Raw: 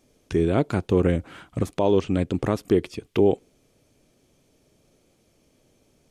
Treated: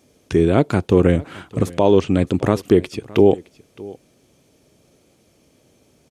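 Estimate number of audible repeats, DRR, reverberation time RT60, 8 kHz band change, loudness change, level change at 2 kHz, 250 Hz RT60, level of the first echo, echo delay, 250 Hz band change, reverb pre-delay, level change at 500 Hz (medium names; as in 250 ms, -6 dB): 1, no reverb, no reverb, no reading, +6.0 dB, +6.0 dB, no reverb, -21.0 dB, 616 ms, +6.0 dB, no reverb, +6.0 dB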